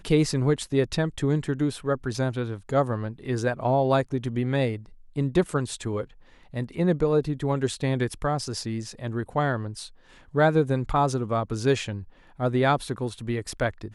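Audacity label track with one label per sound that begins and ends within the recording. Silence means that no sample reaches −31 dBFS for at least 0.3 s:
5.170000	6.030000	sound
6.540000	9.840000	sound
10.350000	12.010000	sound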